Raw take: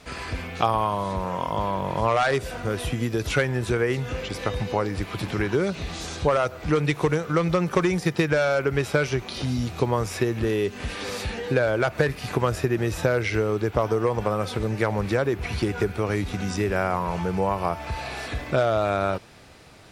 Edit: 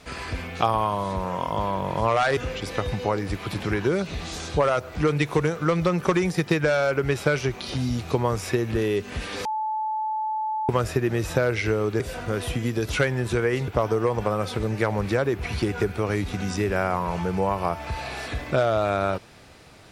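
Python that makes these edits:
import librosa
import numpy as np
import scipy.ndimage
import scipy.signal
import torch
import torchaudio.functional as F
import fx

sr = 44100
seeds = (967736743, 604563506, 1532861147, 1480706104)

y = fx.edit(x, sr, fx.move(start_s=2.37, length_s=1.68, to_s=13.68),
    fx.bleep(start_s=11.13, length_s=1.24, hz=868.0, db=-24.0), tone=tone)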